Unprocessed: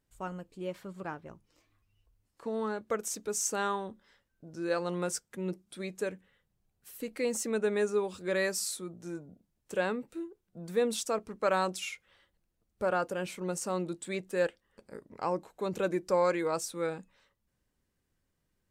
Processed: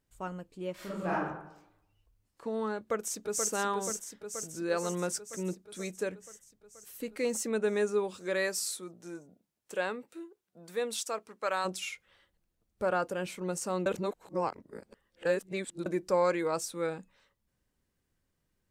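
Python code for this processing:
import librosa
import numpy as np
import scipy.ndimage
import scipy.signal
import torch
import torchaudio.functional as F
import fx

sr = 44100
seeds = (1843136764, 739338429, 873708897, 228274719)

y = fx.reverb_throw(x, sr, start_s=0.74, length_s=0.49, rt60_s=0.83, drr_db=-8.5)
y = fx.echo_throw(y, sr, start_s=2.77, length_s=0.74, ms=480, feedback_pct=70, wet_db=-5.0)
y = fx.highpass(y, sr, hz=fx.line((8.1, 240.0), (11.64, 950.0)), slope=6, at=(8.1, 11.64), fade=0.02)
y = fx.edit(y, sr, fx.reverse_span(start_s=13.86, length_s=2.0), tone=tone)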